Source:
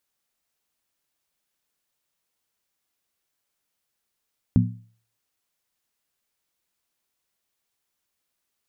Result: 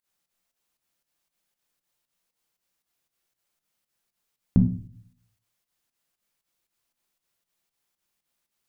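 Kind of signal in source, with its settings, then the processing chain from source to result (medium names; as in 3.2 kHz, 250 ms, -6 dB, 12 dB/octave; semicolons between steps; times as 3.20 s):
skin hit, lowest mode 113 Hz, modes 3, decay 0.46 s, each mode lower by 1 dB, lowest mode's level -14 dB
volume shaper 117 bpm, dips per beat 2, -19 dB, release 106 ms; simulated room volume 350 m³, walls furnished, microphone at 0.84 m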